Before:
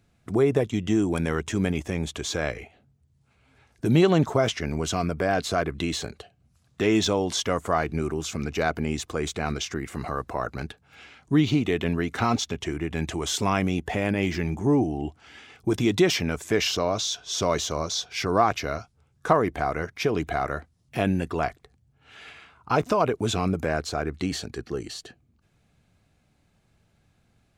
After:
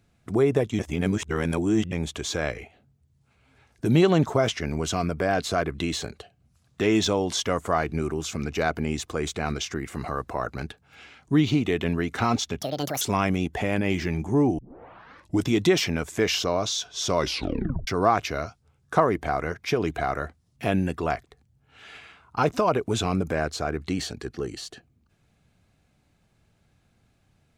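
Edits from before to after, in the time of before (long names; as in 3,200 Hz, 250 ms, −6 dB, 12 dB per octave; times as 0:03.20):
0:00.79–0:01.92: reverse
0:12.61–0:13.34: play speed 181%
0:14.91: tape start 0.87 s
0:17.50: tape stop 0.70 s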